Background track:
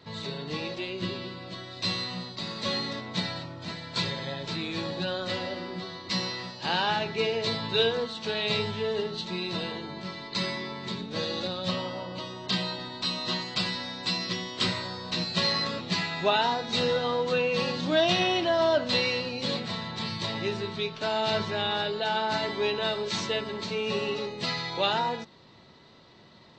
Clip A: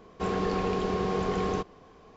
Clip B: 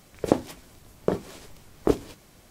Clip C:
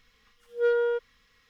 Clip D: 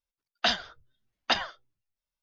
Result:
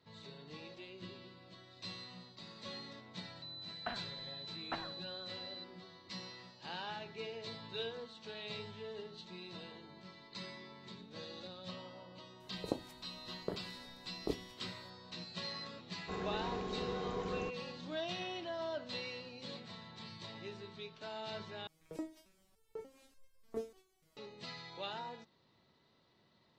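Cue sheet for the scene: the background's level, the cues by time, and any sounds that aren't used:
background track -17 dB
3.42 s: add D -12.5 dB + class-D stage that switches slowly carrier 4 kHz
12.40 s: add B -16 dB + step-sequenced notch 5 Hz 310–5900 Hz
15.88 s: add A -12.5 dB
21.67 s: replace with B -7 dB + resonator arpeggio 3.4 Hz 160–530 Hz
not used: C

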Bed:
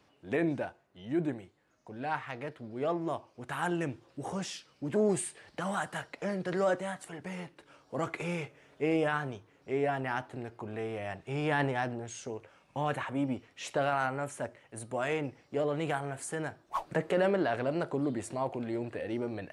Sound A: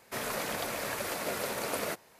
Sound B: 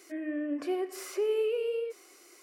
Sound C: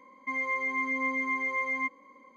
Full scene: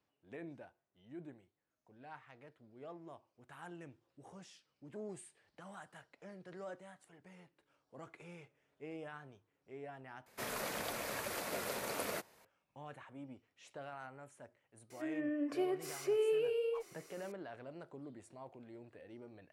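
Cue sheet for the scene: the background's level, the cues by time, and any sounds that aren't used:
bed -18.5 dB
10.26 s: replace with A -6 dB
14.90 s: add B -4 dB
not used: C

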